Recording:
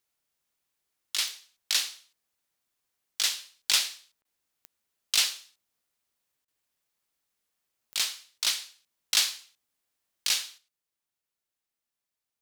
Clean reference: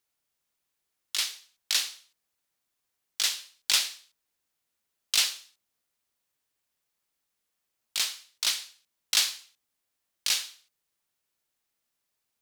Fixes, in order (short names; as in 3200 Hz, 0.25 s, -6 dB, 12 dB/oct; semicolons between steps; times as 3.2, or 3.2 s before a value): de-click; interpolate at 4.22/6.45, 28 ms; gain 0 dB, from 10.58 s +7 dB